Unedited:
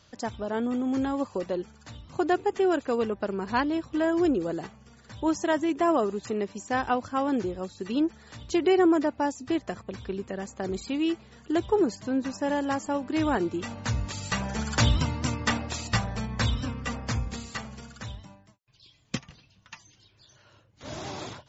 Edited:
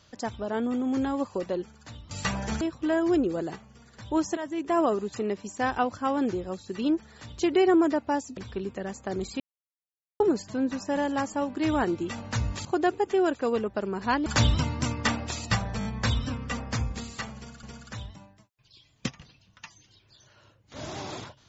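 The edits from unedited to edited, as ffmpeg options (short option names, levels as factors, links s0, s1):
-filter_complex "[0:a]asplit=13[s0][s1][s2][s3][s4][s5][s6][s7][s8][s9][s10][s11][s12];[s0]atrim=end=2.112[s13];[s1]atrim=start=14.178:end=14.682[s14];[s2]atrim=start=3.718:end=5.48,asetpts=PTS-STARTPTS,afade=t=out:st=1.758:d=0.004:c=hsin:silence=0.237137[s15];[s3]atrim=start=5.48:end=9.482,asetpts=PTS-STARTPTS,afade=t=in:d=0.45:silence=0.237137[s16];[s4]atrim=start=9.898:end=10.93,asetpts=PTS-STARTPTS,afade=t=out:st=1.028:d=0.004:c=hsin[s17];[s5]atrim=start=10.93:end=11.73,asetpts=PTS-STARTPTS,volume=0[s18];[s6]atrim=start=11.73:end=14.182,asetpts=PTS-STARTPTS,afade=t=in:d=0.004:c=hsin[s19];[s7]atrim=start=2.108:end=3.722[s20];[s8]atrim=start=14.678:end=16.232[s21];[s9]atrim=start=16.208:end=16.232[s22];[s10]atrim=start=16.208:end=16.232[s23];[s11]atrim=start=16.208:end=17.992[s24];[s12]atrim=start=17.718[s25];[s13][s14]acrossfade=d=0.004:c1=hsin:c2=hsin[s26];[s15][s16]concat=n=2:v=0:a=1[s27];[s26][s27]acrossfade=d=0.004:c1=hsin:c2=hsin[s28];[s17][s18][s19]concat=n=3:v=0:a=1[s29];[s28][s29]acrossfade=d=0.004:c1=hsin:c2=hsin[s30];[s30][s20]acrossfade=d=0.004:c1=hsin:c2=hsin[s31];[s31][s21]acrossfade=d=0.004:c1=hsin:c2=hsin[s32];[s32][s22]acrossfade=d=0.004:c1=hsin:c2=hsin[s33];[s33][s23]acrossfade=d=0.004:c1=hsin:c2=hsin[s34];[s34][s24]acrossfade=d=0.004:c1=hsin:c2=hsin[s35];[s35][s25]acrossfade=d=0.004:c1=hsin:c2=hsin"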